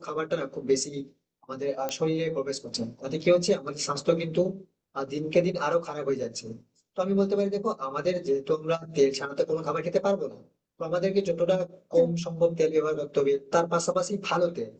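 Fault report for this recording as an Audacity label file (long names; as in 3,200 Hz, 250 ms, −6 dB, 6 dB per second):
1.890000	1.890000	click −15 dBFS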